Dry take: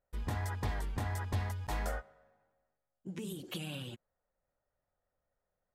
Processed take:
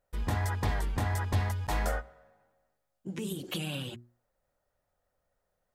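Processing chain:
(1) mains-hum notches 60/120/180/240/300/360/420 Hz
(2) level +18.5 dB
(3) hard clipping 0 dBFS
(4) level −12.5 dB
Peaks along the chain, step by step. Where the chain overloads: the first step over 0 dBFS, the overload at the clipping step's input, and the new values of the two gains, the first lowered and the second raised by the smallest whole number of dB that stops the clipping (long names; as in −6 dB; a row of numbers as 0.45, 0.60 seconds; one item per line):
−24.0, −5.5, −5.5, −18.0 dBFS
no step passes full scale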